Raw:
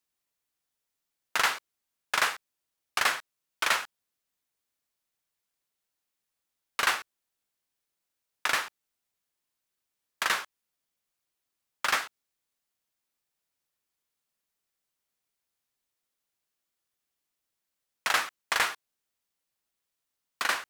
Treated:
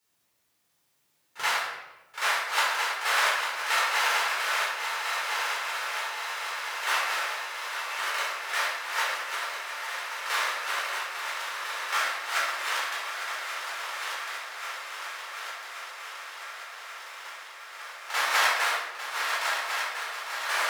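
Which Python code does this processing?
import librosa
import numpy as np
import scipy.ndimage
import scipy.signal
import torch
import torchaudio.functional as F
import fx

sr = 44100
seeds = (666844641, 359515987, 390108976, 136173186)

y = fx.reverse_delay_fb(x, sr, ms=676, feedback_pct=72, wet_db=-6.0)
y = fx.highpass(y, sr, hz=fx.steps((0.0, 65.0), (1.42, 430.0)), slope=24)
y = fx.auto_swell(y, sr, attack_ms=442.0)
y = fx.echo_swing(y, sr, ms=1132, ratio=3, feedback_pct=73, wet_db=-10.0)
y = fx.room_shoebox(y, sr, seeds[0], volume_m3=490.0, walls='mixed', distance_m=4.3)
y = F.gain(torch.from_numpy(y), 3.5).numpy()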